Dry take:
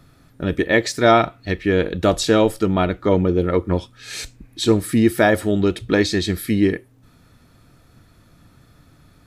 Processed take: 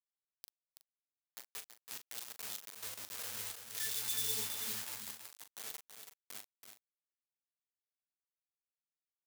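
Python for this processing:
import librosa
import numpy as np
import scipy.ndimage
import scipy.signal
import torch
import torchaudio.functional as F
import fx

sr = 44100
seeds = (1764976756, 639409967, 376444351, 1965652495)

y = fx.spec_swells(x, sr, rise_s=1.44)
y = fx.doppler_pass(y, sr, speed_mps=28, closest_m=2.5, pass_at_s=3.84)
y = fx.peak_eq(y, sr, hz=120.0, db=7.0, octaves=0.61)
y = fx.octave_resonator(y, sr, note='A', decay_s=0.3)
y = fx.phaser_stages(y, sr, stages=12, low_hz=310.0, high_hz=3100.0, hz=0.95, feedback_pct=15)
y = fx.quant_dither(y, sr, seeds[0], bits=8, dither='none')
y = np.diff(y, prepend=0.0)
y = y + 10.0 ** (-11.0 / 20.0) * np.pad(y, (int(329 * sr / 1000.0), 0))[:len(y)]
y = fx.power_curve(y, sr, exponent=0.7)
y = fx.doubler(y, sr, ms=40.0, db=-9.5)
y = y * 10.0 ** (15.5 / 20.0)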